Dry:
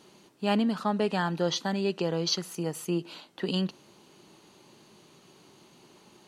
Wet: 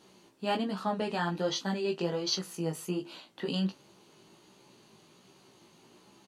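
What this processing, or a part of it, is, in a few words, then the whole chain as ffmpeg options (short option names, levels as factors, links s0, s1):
double-tracked vocal: -filter_complex "[0:a]asplit=2[s0][s1];[s1]adelay=26,volume=0.251[s2];[s0][s2]amix=inputs=2:normalize=0,flanger=delay=15:depth=3.4:speed=1.3"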